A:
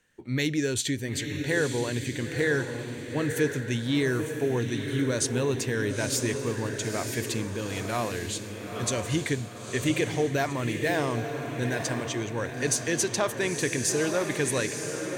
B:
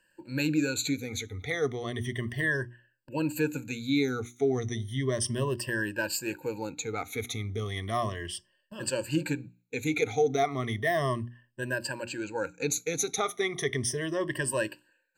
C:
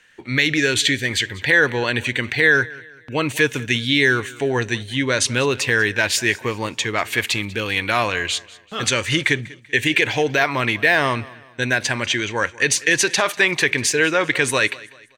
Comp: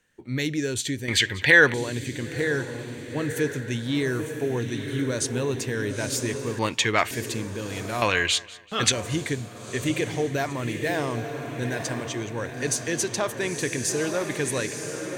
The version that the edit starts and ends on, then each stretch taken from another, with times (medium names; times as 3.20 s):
A
1.08–1.74 s: from C
6.59–7.11 s: from C
8.02–8.92 s: from C
not used: B